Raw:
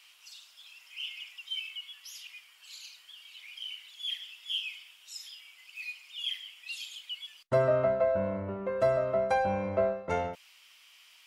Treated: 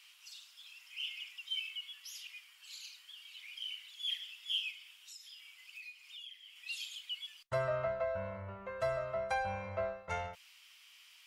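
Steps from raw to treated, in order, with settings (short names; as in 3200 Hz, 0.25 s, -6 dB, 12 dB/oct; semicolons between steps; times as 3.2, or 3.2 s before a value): passive tone stack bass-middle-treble 10-0-10; 4.7–6.56 compressor 10:1, threshold -48 dBFS, peak gain reduction 16.5 dB; high shelf 2000 Hz -8 dB; gain +6 dB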